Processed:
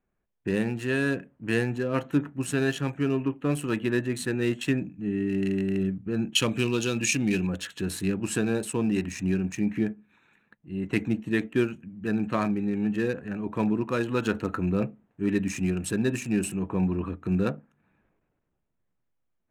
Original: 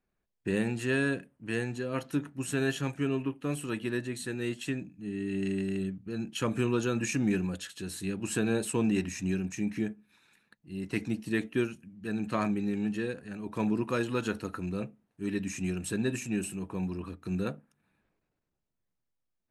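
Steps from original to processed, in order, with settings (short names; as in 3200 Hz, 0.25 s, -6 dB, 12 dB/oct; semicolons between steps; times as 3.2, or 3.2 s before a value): Wiener smoothing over 9 samples; vocal rider within 4 dB 0.5 s; 6.35–7.47 resonant high shelf 2100 Hz +8 dB, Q 1.5; gain +5 dB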